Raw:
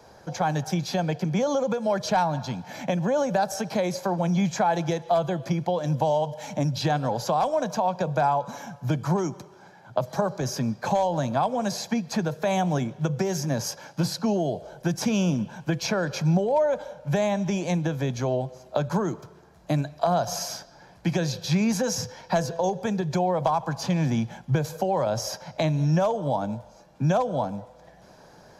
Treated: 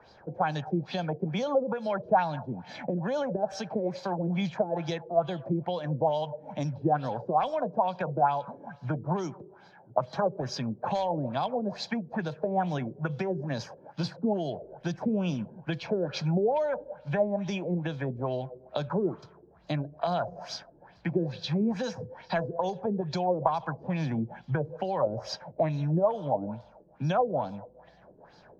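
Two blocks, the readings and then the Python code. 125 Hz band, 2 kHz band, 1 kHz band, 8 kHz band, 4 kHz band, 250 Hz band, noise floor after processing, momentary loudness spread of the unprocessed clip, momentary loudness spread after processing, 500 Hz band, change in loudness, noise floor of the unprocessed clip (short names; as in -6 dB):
-6.0 dB, -5.0 dB, -3.5 dB, -16.5 dB, -6.0 dB, -5.0 dB, -57 dBFS, 7 LU, 9 LU, -3.5 dB, -4.5 dB, -52 dBFS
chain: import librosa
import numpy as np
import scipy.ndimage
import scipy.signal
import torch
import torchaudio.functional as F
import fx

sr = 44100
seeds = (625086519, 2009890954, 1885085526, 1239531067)

y = fx.filter_lfo_lowpass(x, sr, shape='sine', hz=2.3, low_hz=350.0, high_hz=4600.0, q=3.2)
y = F.gain(torch.from_numpy(y), -6.5).numpy()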